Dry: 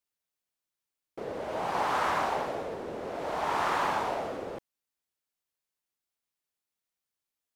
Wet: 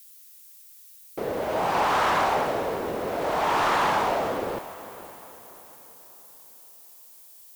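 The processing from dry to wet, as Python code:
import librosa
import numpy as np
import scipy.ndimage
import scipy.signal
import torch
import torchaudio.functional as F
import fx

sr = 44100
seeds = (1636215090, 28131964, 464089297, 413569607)

y = fx.dmg_noise_colour(x, sr, seeds[0], colour='violet', level_db=-57.0)
y = fx.fold_sine(y, sr, drive_db=6, ceiling_db=-15.5)
y = fx.echo_diffused(y, sr, ms=522, feedback_pct=43, wet_db=-15.5)
y = y * librosa.db_to_amplitude(-2.0)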